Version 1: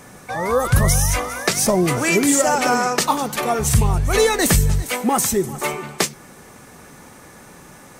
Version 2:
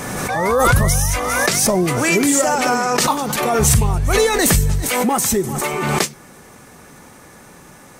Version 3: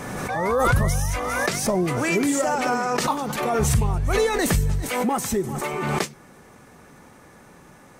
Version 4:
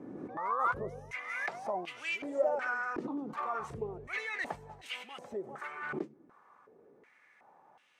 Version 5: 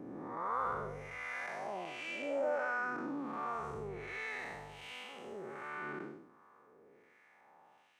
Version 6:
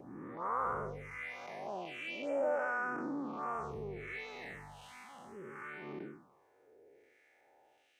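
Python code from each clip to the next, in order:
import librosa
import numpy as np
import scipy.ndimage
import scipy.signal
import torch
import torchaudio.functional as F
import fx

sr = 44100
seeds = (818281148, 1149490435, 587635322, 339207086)

y1 = fx.pre_swell(x, sr, db_per_s=25.0)
y2 = fx.high_shelf(y1, sr, hz=3800.0, db=-7.5)
y2 = F.gain(torch.from_numpy(y2), -5.0).numpy()
y3 = fx.filter_held_bandpass(y2, sr, hz=2.7, low_hz=310.0, high_hz=2900.0)
y3 = F.gain(torch.from_numpy(y3), -3.0).numpy()
y4 = fx.spec_blur(y3, sr, span_ms=267.0)
y4 = F.gain(torch.from_numpy(y4), 1.0).numpy()
y5 = fx.env_phaser(y4, sr, low_hz=160.0, high_hz=4100.0, full_db=-35.0)
y5 = F.gain(torch.from_numpy(y5), 1.5).numpy()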